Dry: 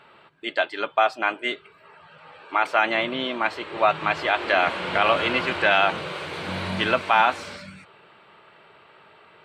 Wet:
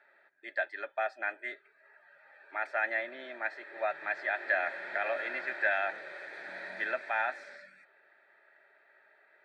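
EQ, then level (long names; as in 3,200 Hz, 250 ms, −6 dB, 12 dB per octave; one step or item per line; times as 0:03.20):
formant filter e
high-pass filter 400 Hz 12 dB per octave
phaser with its sweep stopped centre 1,200 Hz, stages 4
+9.0 dB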